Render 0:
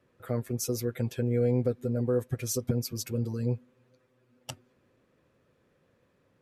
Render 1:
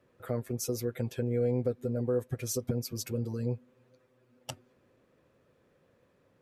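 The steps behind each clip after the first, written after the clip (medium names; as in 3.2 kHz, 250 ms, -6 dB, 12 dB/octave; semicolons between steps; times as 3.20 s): peaking EQ 590 Hz +3 dB 1.5 oct; in parallel at 0 dB: compression, threshold -33 dBFS, peak gain reduction 12.5 dB; on the sum: trim -6.5 dB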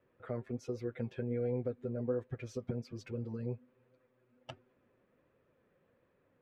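flange 1.3 Hz, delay 1.9 ms, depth 3.8 ms, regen +69%; Chebyshev low-pass 2.4 kHz, order 2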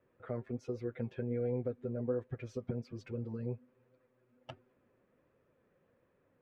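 treble shelf 5 kHz -10 dB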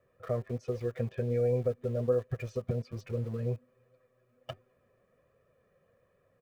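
comb 1.7 ms, depth 64%; in parallel at -7 dB: small samples zeroed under -46 dBFS; on the sum: trim +1.5 dB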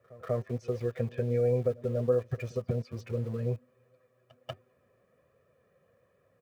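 high-pass 59 Hz; pre-echo 190 ms -21 dB; trim +1.5 dB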